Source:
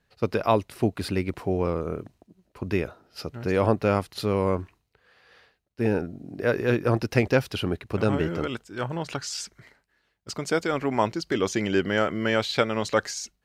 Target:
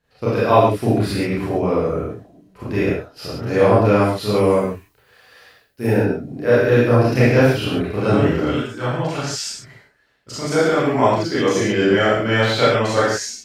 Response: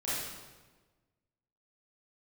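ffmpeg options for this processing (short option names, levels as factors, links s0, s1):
-filter_complex "[0:a]asettb=1/sr,asplit=3[s0][s1][s2];[s0]atrim=end=4.324[s3];[s1]atrim=start=4.32:end=5.87,asetpts=PTS-STARTPTS,afade=t=in:d=0.004:c=qsin,afade=t=out:st=1.546:d=0.004:c=qsin,aemphasis=mode=production:type=50fm[s4];[s2]atrim=start=5.866[s5];[s3][s4]acrossfade=d=0.004:c1=hsin:c2=qsin[s6];[s6][s5]acrossfade=d=0.004:c1=qsin:c2=hsin[s7];[1:a]atrim=start_sample=2205,afade=t=out:st=0.24:d=0.01,atrim=end_sample=11025[s8];[s7][s8]afir=irnorm=-1:irlink=0,volume=1.33"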